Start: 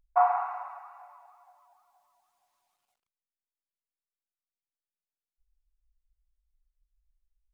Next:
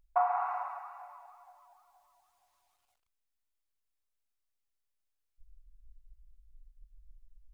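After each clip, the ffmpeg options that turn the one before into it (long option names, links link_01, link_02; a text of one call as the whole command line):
ffmpeg -i in.wav -af "acompressor=threshold=-29dB:ratio=3,asubboost=boost=8.5:cutoff=66,volume=2dB" out.wav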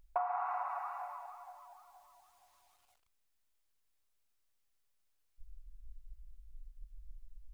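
ffmpeg -i in.wav -af "acompressor=threshold=-40dB:ratio=4,volume=5.5dB" out.wav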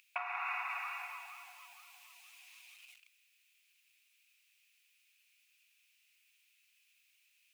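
ffmpeg -i in.wav -af "highpass=frequency=2500:width_type=q:width=7.1,volume=10.5dB" out.wav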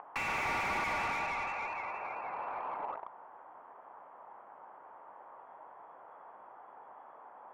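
ffmpeg -i in.wav -filter_complex "[0:a]lowpass=frequency=2900:width_type=q:width=0.5098,lowpass=frequency=2900:width_type=q:width=0.6013,lowpass=frequency=2900:width_type=q:width=0.9,lowpass=frequency=2900:width_type=q:width=2.563,afreqshift=-3400,asplit=2[link_01][link_02];[link_02]highpass=frequency=720:poles=1,volume=34dB,asoftclip=type=tanh:threshold=-22dB[link_03];[link_01][link_03]amix=inputs=2:normalize=0,lowpass=frequency=1000:poles=1,volume=-6dB" out.wav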